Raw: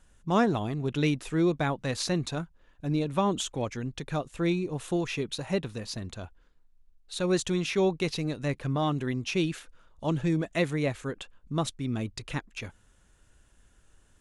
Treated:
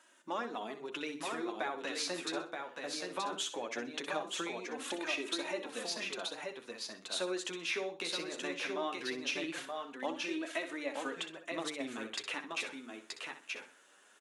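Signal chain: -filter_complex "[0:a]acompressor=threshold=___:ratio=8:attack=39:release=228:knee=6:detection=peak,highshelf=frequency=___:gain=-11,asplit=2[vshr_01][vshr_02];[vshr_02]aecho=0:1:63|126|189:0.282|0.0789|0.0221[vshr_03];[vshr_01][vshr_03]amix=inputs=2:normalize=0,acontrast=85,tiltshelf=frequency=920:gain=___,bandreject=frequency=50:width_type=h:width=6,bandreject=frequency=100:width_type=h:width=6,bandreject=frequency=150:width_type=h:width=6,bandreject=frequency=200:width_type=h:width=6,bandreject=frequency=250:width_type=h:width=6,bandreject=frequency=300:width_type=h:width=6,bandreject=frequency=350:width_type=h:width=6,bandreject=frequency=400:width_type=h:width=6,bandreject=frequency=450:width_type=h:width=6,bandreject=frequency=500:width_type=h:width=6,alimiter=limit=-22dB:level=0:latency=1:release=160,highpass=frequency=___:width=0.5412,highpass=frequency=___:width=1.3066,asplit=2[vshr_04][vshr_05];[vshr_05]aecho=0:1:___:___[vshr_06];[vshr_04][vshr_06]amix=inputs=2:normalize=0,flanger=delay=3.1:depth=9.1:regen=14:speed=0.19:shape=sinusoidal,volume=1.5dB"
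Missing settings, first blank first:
-38dB, 3000, -6, 280, 280, 927, 0.631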